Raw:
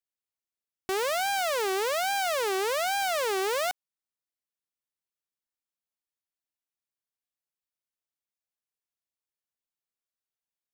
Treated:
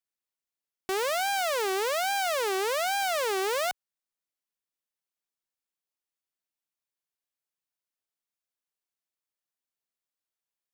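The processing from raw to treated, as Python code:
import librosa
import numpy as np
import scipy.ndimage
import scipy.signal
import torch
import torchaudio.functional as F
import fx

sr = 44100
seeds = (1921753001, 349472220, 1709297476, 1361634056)

y = fx.peak_eq(x, sr, hz=67.0, db=-9.0, octaves=1.7)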